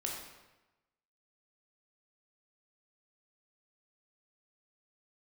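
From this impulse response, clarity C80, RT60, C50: 4.0 dB, 1.1 s, 2.0 dB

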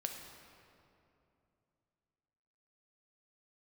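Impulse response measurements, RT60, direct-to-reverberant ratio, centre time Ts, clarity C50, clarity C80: 2.8 s, 2.5 dB, 63 ms, 4.5 dB, 5.5 dB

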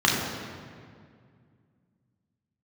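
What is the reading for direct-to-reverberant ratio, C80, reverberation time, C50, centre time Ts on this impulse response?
-4.0 dB, 3.0 dB, 2.1 s, 1.0 dB, 88 ms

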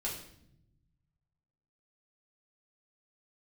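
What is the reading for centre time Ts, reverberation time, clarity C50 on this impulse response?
34 ms, 0.75 s, 5.5 dB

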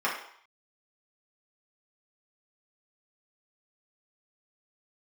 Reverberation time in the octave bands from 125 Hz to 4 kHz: 0.25, 0.50, 0.55, 0.70, 0.65, 0.60 s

